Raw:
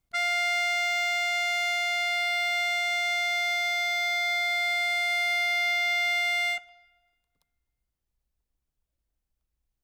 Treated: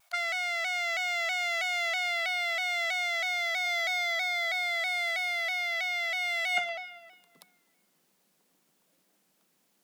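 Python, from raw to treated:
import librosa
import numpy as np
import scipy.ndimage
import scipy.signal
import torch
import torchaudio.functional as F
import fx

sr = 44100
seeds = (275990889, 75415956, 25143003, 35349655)

y = fx.ellip_highpass(x, sr, hz=fx.steps((0.0, 600.0), (3.65, 170.0)), order=4, stop_db=40)
y = fx.over_compress(y, sr, threshold_db=-39.0, ratio=-1.0)
y = fx.vibrato_shape(y, sr, shape='saw_down', rate_hz=3.1, depth_cents=100.0)
y = y * librosa.db_to_amplitude(8.5)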